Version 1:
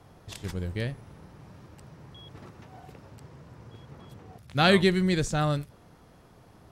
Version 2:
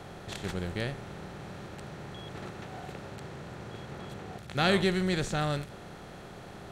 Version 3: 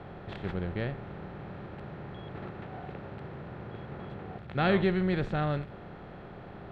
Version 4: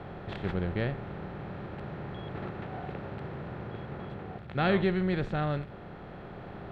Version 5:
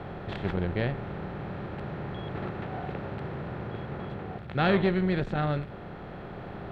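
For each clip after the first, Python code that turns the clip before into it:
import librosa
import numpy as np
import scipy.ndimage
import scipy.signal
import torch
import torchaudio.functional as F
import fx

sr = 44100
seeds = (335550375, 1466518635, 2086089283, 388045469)

y1 = fx.bin_compress(x, sr, power=0.6)
y1 = y1 * 10.0 ** (-6.5 / 20.0)
y2 = fx.air_absorb(y1, sr, metres=420.0)
y2 = y2 * 10.0 ** (1.5 / 20.0)
y3 = fx.rider(y2, sr, range_db=3, speed_s=2.0)
y4 = fx.transformer_sat(y3, sr, knee_hz=440.0)
y4 = y4 * 10.0 ** (3.5 / 20.0)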